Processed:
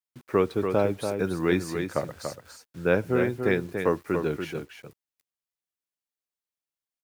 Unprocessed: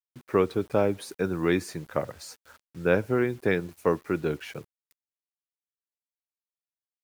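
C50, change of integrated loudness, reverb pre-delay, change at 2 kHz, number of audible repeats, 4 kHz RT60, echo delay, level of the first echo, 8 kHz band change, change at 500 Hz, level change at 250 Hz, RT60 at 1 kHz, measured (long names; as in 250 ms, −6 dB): no reverb audible, +0.5 dB, no reverb audible, +1.0 dB, 1, no reverb audible, 287 ms, −6.5 dB, +1.0 dB, +1.0 dB, +1.0 dB, no reverb audible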